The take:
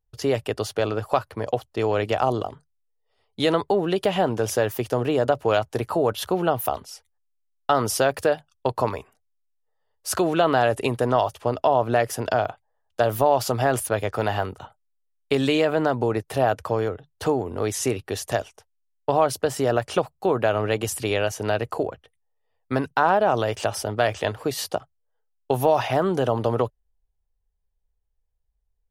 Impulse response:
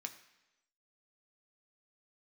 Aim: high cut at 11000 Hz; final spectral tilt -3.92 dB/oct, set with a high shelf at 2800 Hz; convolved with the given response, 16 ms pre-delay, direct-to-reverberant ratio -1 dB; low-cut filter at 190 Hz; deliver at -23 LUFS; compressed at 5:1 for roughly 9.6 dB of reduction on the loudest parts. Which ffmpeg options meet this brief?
-filter_complex "[0:a]highpass=190,lowpass=11k,highshelf=f=2.8k:g=-4.5,acompressor=threshold=-26dB:ratio=5,asplit=2[a][b];[1:a]atrim=start_sample=2205,adelay=16[c];[b][c]afir=irnorm=-1:irlink=0,volume=3.5dB[d];[a][d]amix=inputs=2:normalize=0,volume=6dB"

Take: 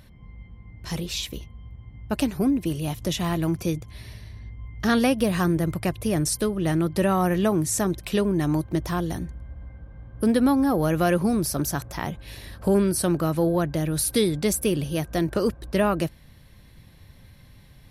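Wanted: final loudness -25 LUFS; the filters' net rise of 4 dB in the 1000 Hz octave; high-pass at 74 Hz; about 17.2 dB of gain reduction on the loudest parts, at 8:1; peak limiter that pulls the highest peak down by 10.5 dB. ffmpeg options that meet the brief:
-af "highpass=74,equalizer=f=1k:t=o:g=5.5,acompressor=threshold=-34dB:ratio=8,volume=15dB,alimiter=limit=-13.5dB:level=0:latency=1"

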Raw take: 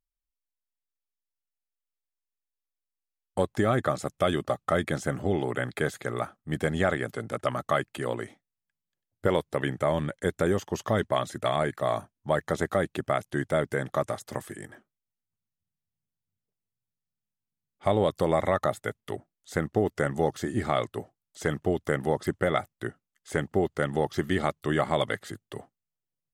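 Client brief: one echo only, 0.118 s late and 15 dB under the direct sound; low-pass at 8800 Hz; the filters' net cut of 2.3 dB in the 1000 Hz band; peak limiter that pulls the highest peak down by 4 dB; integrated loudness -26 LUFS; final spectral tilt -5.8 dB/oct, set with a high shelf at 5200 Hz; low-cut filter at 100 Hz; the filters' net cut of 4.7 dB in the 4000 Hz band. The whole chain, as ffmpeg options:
-af "highpass=100,lowpass=8.8k,equalizer=f=1k:t=o:g=-3,equalizer=f=4k:t=o:g=-8.5,highshelf=f=5.2k:g=7,alimiter=limit=-16dB:level=0:latency=1,aecho=1:1:118:0.178,volume=5dB"

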